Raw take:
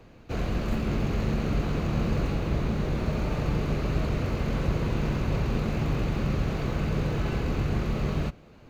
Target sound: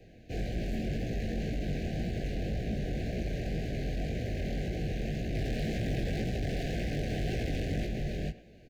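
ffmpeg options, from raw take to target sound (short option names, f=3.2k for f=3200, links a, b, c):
-filter_complex "[0:a]asettb=1/sr,asplit=3[a][b][c];[a]atrim=end=5.354[d];[b]atrim=start=5.35:end=7.85,asetpts=PTS-STARTPTS,afade=t=in:d=0.004:c=qsin,afade=t=out:st=2.496:d=0.004:c=qsin,acontrast=65[e];[c]atrim=start=7.846[f];[d][e]acrossfade=d=0.004:c1=hsin:c2=qsin[g];[g][f]acrossfade=d=0.004:c1=qsin:c2=hsin,volume=27.5dB,asoftclip=hard,volume=-27.5dB,flanger=delay=16.5:depth=7:speed=1.9,asuperstop=centerf=1100:order=20:qfactor=1.4,asplit=2[h][i];[i]adelay=110,highpass=300,lowpass=3.4k,asoftclip=type=hard:threshold=-33dB,volume=-16dB[j];[h][j]amix=inputs=2:normalize=0"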